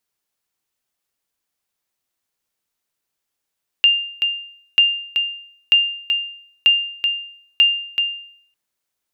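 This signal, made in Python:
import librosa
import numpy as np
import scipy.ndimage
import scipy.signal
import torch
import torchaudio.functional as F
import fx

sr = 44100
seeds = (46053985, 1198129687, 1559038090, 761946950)

y = fx.sonar_ping(sr, hz=2800.0, decay_s=0.62, every_s=0.94, pings=5, echo_s=0.38, echo_db=-6.5, level_db=-6.0)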